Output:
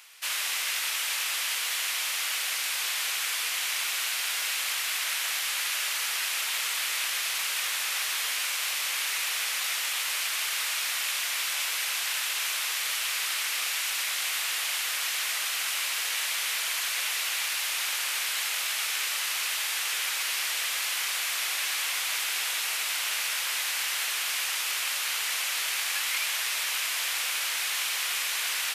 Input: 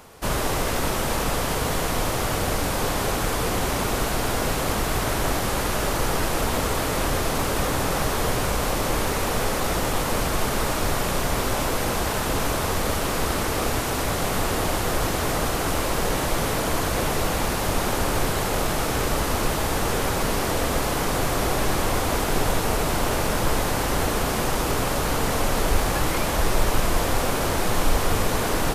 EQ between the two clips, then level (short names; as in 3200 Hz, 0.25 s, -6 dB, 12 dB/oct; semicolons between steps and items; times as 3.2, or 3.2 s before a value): resonant high-pass 2400 Hz, resonance Q 1.5; 0.0 dB